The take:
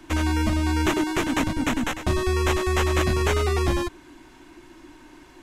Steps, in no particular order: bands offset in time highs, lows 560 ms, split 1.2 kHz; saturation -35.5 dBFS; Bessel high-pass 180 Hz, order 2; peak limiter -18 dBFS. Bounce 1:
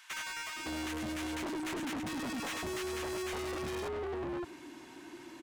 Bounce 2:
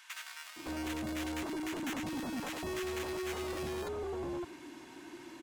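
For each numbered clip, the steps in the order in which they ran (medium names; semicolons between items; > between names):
bands offset in time > peak limiter > Bessel high-pass > saturation; peak limiter > Bessel high-pass > saturation > bands offset in time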